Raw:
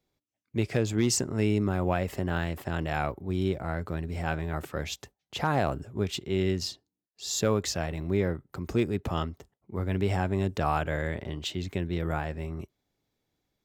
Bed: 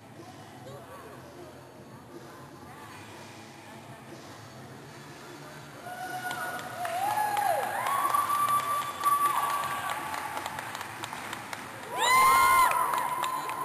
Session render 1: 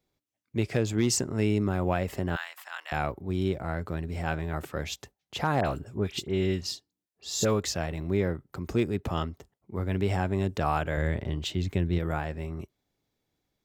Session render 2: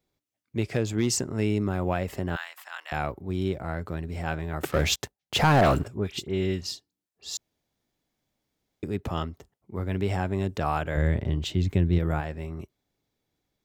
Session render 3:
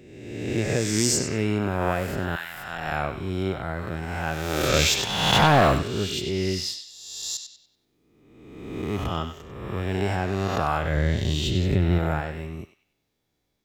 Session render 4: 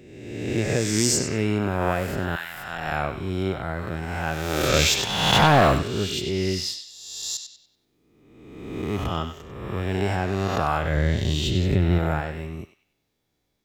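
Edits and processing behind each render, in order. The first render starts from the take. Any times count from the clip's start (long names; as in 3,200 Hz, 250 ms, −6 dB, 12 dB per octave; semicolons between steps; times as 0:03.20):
0:02.36–0:02.92: high-pass filter 980 Hz 24 dB per octave; 0:05.61–0:07.60: all-pass dispersion highs, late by 47 ms, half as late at 2,300 Hz; 0:10.97–0:11.99: low-shelf EQ 180 Hz +7.5 dB
0:04.63–0:05.88: leveller curve on the samples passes 3; 0:07.37–0:08.83: fill with room tone; 0:10.95–0:12.21: low-shelf EQ 320 Hz +5.5 dB
peak hold with a rise ahead of every peak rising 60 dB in 1.28 s; on a send: feedback echo with a band-pass in the loop 96 ms, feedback 40%, band-pass 2,900 Hz, level −6 dB
level +1 dB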